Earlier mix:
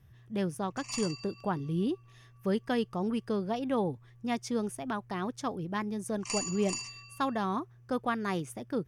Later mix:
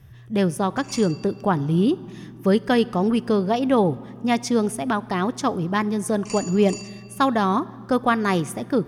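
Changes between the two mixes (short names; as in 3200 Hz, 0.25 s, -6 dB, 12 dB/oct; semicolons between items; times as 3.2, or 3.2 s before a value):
speech +8.5 dB; reverb: on, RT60 2.5 s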